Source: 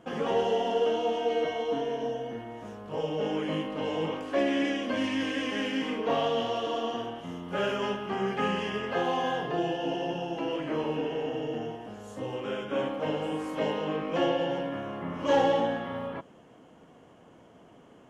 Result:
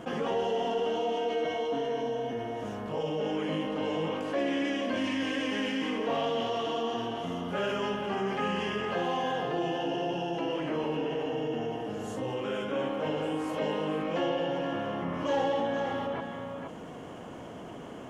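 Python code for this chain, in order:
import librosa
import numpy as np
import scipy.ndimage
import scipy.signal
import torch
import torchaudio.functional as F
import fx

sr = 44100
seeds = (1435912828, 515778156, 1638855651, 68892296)

p1 = x + fx.echo_single(x, sr, ms=471, db=-10.5, dry=0)
p2 = fx.env_flatten(p1, sr, amount_pct=50)
y = F.gain(torch.from_numpy(p2), -5.5).numpy()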